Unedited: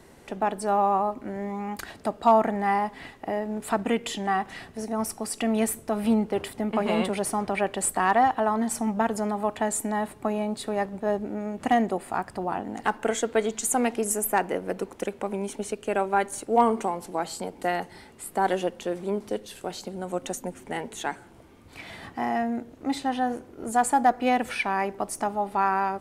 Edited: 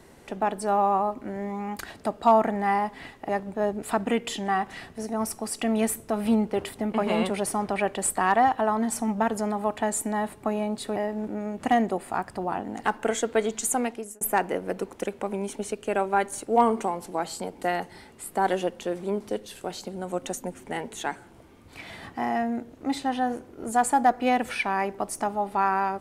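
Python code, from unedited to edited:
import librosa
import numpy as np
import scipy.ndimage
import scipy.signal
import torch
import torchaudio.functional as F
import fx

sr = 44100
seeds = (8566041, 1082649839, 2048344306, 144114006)

y = fx.edit(x, sr, fx.swap(start_s=3.29, length_s=0.32, other_s=10.75, other_length_s=0.53),
    fx.fade_out_span(start_s=13.67, length_s=0.54), tone=tone)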